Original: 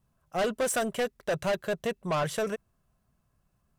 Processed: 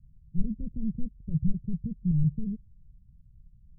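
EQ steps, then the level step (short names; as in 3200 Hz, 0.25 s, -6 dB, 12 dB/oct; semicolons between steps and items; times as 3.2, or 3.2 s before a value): inverse Chebyshev low-pass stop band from 870 Hz, stop band 70 dB; tilt -4.5 dB/oct; 0.0 dB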